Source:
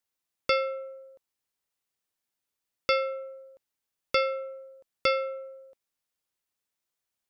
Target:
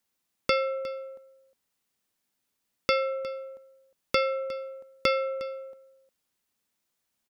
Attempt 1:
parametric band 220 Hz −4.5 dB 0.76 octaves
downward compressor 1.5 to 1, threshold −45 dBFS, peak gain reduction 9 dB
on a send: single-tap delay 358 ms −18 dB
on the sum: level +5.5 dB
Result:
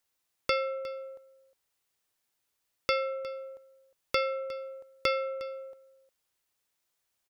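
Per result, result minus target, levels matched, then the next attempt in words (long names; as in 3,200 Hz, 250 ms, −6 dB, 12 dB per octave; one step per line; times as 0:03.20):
250 Hz band −5.0 dB; downward compressor: peak gain reduction +3 dB
parametric band 220 Hz +7 dB 0.76 octaves
downward compressor 1.5 to 1, threshold −45 dBFS, peak gain reduction 9 dB
on a send: single-tap delay 358 ms −18 dB
on the sum: level +5.5 dB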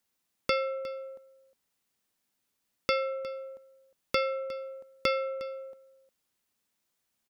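downward compressor: peak gain reduction +3 dB
parametric band 220 Hz +7 dB 0.76 octaves
downward compressor 1.5 to 1, threshold −36 dBFS, peak gain reduction 6 dB
on a send: single-tap delay 358 ms −18 dB
on the sum: level +5.5 dB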